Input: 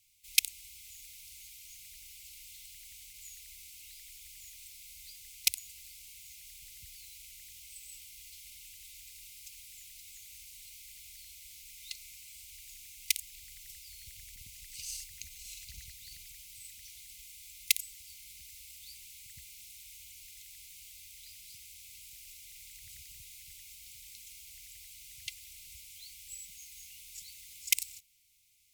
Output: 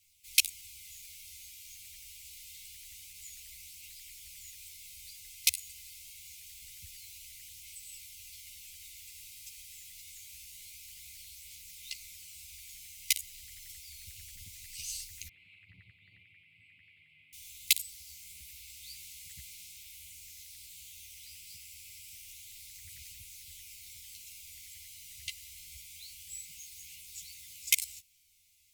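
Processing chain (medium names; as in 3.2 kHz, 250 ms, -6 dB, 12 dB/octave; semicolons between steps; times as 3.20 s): 15.28–17.33 s: elliptic band-pass 110–2400 Hz, stop band 40 dB; chorus voices 2, 0.13 Hz, delay 12 ms, depth 1.1 ms; trim +4.5 dB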